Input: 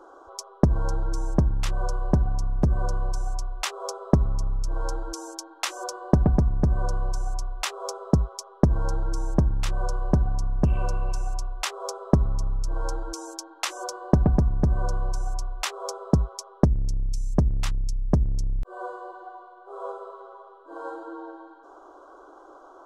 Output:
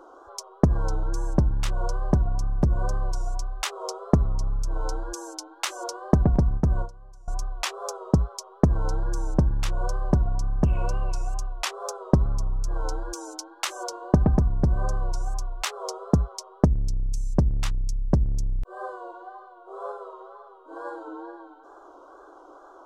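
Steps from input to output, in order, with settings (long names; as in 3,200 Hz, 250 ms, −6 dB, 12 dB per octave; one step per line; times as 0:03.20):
0:06.35–0:07.28: noise gate with hold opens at −17 dBFS
tape wow and flutter 75 cents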